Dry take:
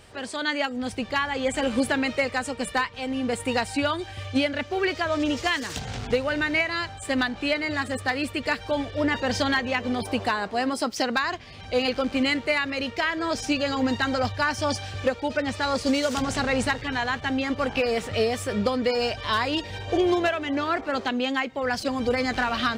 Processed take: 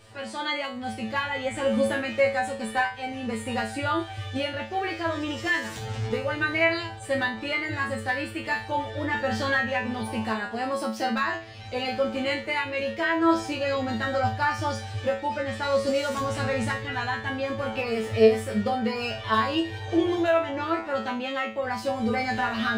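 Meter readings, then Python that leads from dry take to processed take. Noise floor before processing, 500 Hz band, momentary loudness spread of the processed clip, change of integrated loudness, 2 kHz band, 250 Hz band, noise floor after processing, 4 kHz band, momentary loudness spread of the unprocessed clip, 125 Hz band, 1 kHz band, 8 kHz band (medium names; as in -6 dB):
-41 dBFS, 0.0 dB, 7 LU, -1.0 dB, -1.0 dB, -2.5 dB, -38 dBFS, -4.5 dB, 4 LU, +1.5 dB, 0.0 dB, -6.0 dB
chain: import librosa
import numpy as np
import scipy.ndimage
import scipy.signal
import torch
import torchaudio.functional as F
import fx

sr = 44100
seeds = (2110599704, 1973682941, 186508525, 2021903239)

y = fx.hpss(x, sr, part='harmonic', gain_db=5)
y = fx.dynamic_eq(y, sr, hz=5200.0, q=0.87, threshold_db=-41.0, ratio=4.0, max_db=-6)
y = fx.comb_fb(y, sr, f0_hz=110.0, decay_s=0.34, harmonics='all', damping=0.0, mix_pct=100)
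y = y * 10.0 ** (7.0 / 20.0)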